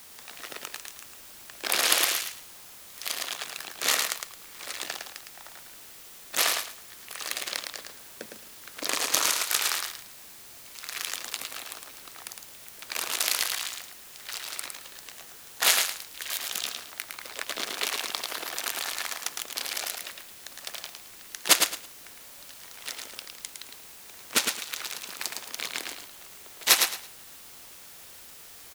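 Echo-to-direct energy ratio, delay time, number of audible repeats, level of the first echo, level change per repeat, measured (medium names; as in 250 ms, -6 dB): -5.0 dB, 109 ms, 3, -5.0 dB, -13.0 dB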